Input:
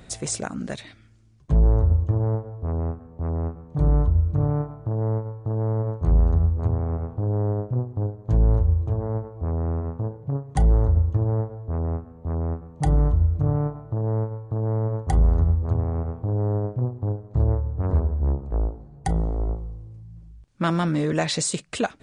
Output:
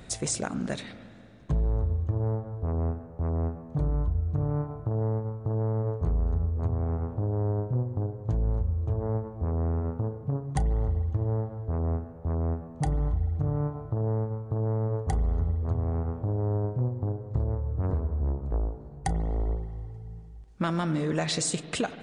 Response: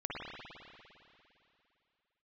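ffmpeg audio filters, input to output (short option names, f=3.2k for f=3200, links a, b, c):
-filter_complex "[0:a]acompressor=threshold=-25dB:ratio=4,asplit=2[a][b];[1:a]atrim=start_sample=2205,adelay=32[c];[b][c]afir=irnorm=-1:irlink=0,volume=-15.5dB[d];[a][d]amix=inputs=2:normalize=0"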